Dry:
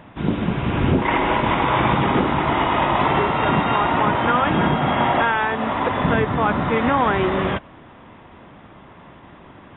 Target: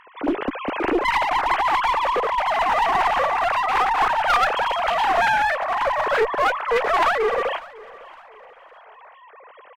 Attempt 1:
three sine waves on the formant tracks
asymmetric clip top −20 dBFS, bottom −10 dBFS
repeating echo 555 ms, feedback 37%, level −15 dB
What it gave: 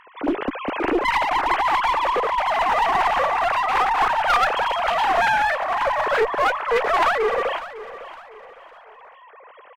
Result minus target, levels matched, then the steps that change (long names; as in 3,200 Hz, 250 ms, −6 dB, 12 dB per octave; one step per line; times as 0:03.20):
echo-to-direct +6 dB
change: repeating echo 555 ms, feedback 37%, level −21 dB